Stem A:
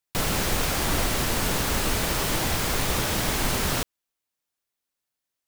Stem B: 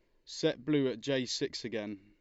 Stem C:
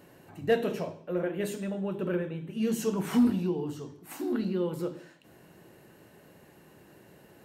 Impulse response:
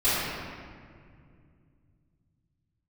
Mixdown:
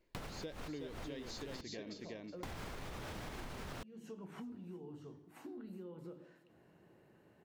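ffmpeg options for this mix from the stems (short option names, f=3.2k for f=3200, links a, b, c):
-filter_complex "[0:a]volume=-1dB,asplit=3[a][b][c];[a]atrim=end=1.61,asetpts=PTS-STARTPTS,afade=t=out:st=1.606:d=0.004:c=hsin[d];[b]atrim=start=1.61:end=2.43,asetpts=PTS-STARTPTS,volume=0[e];[c]atrim=start=2.43,asetpts=PTS-STARTPTS,afade=t=in:d=0.004:c=hsin[f];[d][e][f]concat=n=3:v=0:a=1[g];[1:a]volume=-4dB,asplit=3[h][i][j];[i]volume=-4.5dB[k];[2:a]acompressor=threshold=-35dB:ratio=6,adelay=1250,volume=-10dB,asplit=2[l][m];[m]volume=-21.5dB[n];[j]apad=whole_len=241270[o];[g][o]sidechaincompress=threshold=-55dB:ratio=4:attack=16:release=111[p];[p][l]amix=inputs=2:normalize=0,lowpass=f=2.2k:p=1,alimiter=level_in=2.5dB:limit=-24dB:level=0:latency=1:release=231,volume=-2.5dB,volume=0dB[q];[k][n]amix=inputs=2:normalize=0,aecho=0:1:369|738|1107:1|0.16|0.0256[r];[h][q][r]amix=inputs=3:normalize=0,acompressor=threshold=-43dB:ratio=6"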